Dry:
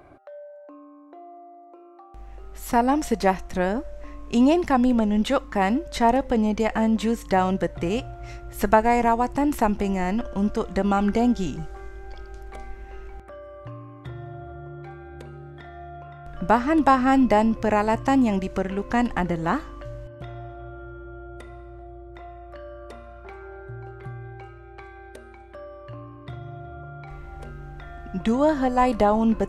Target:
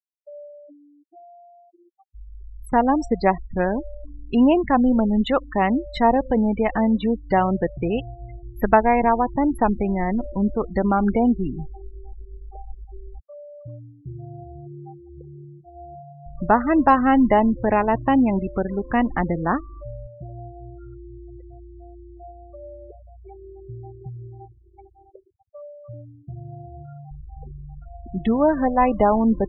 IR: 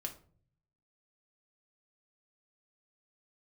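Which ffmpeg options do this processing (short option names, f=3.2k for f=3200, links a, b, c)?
-af "afftfilt=real='re*gte(hypot(re,im),0.0447)':imag='im*gte(hypot(re,im),0.0447)':win_size=1024:overlap=0.75,afftdn=nr=14:nf=-34,volume=2dB"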